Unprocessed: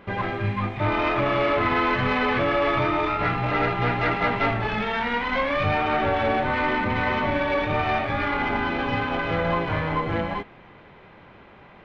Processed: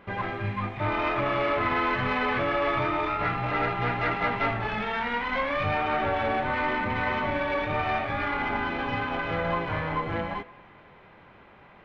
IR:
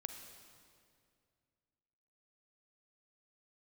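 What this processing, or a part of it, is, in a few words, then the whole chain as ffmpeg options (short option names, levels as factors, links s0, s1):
filtered reverb send: -filter_complex "[0:a]asplit=2[s0][s1];[s1]highpass=560,lowpass=3000[s2];[1:a]atrim=start_sample=2205[s3];[s2][s3]afir=irnorm=-1:irlink=0,volume=0.447[s4];[s0][s4]amix=inputs=2:normalize=0,volume=0.562"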